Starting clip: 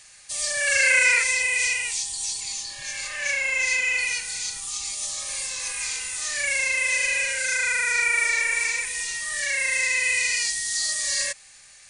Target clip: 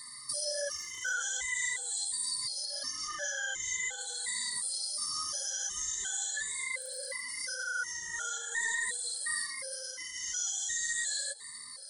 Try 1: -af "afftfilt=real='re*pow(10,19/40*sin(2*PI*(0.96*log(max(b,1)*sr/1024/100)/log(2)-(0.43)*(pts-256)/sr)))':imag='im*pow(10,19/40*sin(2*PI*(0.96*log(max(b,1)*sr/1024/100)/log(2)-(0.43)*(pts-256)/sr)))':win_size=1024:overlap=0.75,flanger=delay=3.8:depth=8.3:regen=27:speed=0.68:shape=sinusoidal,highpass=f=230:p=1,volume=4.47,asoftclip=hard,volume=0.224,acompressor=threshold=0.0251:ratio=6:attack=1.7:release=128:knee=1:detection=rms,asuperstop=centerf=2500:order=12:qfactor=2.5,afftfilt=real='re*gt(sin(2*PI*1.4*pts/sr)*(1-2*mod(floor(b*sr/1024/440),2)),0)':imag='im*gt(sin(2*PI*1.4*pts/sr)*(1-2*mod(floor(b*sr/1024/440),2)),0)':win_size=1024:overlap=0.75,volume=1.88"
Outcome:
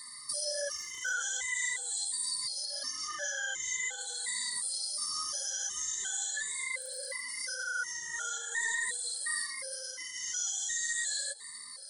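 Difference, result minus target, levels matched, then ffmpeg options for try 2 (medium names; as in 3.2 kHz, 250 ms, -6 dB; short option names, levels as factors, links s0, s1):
125 Hz band -5.5 dB
-af "afftfilt=real='re*pow(10,19/40*sin(2*PI*(0.96*log(max(b,1)*sr/1024/100)/log(2)-(0.43)*(pts-256)/sr)))':imag='im*pow(10,19/40*sin(2*PI*(0.96*log(max(b,1)*sr/1024/100)/log(2)-(0.43)*(pts-256)/sr)))':win_size=1024:overlap=0.75,flanger=delay=3.8:depth=8.3:regen=27:speed=0.68:shape=sinusoidal,highpass=f=74:p=1,volume=4.47,asoftclip=hard,volume=0.224,acompressor=threshold=0.0251:ratio=6:attack=1.7:release=128:knee=1:detection=rms,asuperstop=centerf=2500:order=12:qfactor=2.5,afftfilt=real='re*gt(sin(2*PI*1.4*pts/sr)*(1-2*mod(floor(b*sr/1024/440),2)),0)':imag='im*gt(sin(2*PI*1.4*pts/sr)*(1-2*mod(floor(b*sr/1024/440),2)),0)':win_size=1024:overlap=0.75,volume=1.88"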